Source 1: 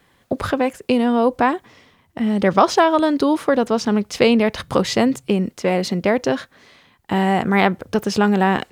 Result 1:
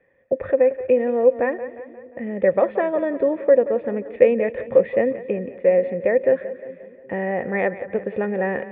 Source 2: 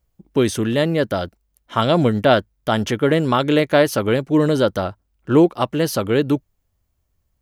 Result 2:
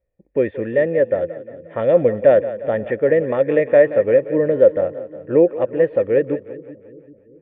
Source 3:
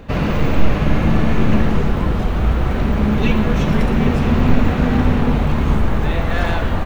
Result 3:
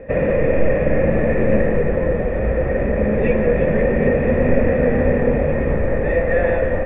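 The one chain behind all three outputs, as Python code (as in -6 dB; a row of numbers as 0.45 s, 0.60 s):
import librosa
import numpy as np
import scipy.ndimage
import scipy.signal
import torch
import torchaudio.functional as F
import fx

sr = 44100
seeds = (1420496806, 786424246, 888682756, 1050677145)

y = fx.formant_cascade(x, sr, vowel='e')
y = fx.high_shelf(y, sr, hz=3500.0, db=-8.0)
y = fx.echo_split(y, sr, split_hz=360.0, low_ms=388, high_ms=177, feedback_pct=52, wet_db=-14)
y = y * 10.0 ** (-2 / 20.0) / np.max(np.abs(y))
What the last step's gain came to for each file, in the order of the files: +8.0 dB, +10.5 dB, +15.0 dB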